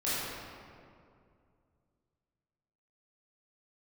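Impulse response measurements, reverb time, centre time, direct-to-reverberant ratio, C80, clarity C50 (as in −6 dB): 2.3 s, 156 ms, −12.0 dB, −2.0 dB, −4.5 dB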